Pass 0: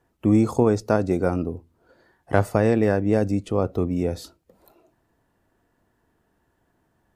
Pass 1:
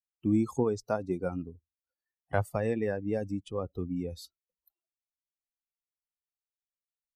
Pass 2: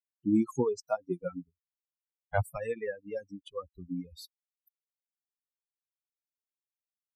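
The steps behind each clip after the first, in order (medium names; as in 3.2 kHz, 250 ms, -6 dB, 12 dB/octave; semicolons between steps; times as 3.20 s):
expander on every frequency bin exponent 2; in parallel at -2.5 dB: compression, threshold -28 dBFS, peak gain reduction 12.5 dB; on the sum: trim -8 dB
expander on every frequency bin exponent 3; trim +3.5 dB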